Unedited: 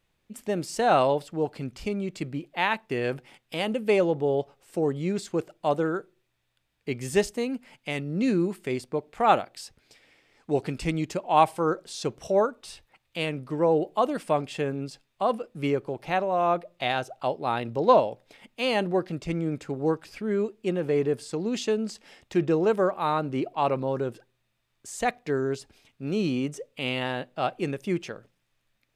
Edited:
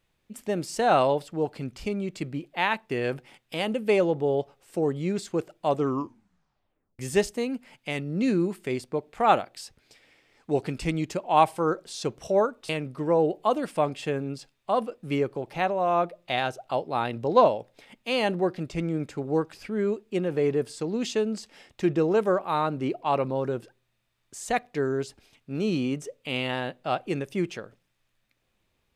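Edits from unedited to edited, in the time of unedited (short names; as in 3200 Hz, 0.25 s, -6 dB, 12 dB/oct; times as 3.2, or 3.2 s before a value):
5.68 tape stop 1.31 s
12.69–13.21 cut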